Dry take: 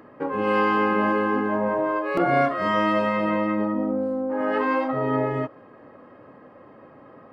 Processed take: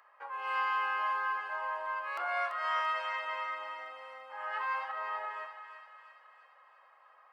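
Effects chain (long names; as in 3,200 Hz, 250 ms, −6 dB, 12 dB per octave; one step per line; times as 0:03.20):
inverse Chebyshev high-pass filter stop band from 190 Hz, stop band 70 dB
feedback echo with a high-pass in the loop 338 ms, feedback 63%, high-pass 1,200 Hz, level −7 dB
level −7.5 dB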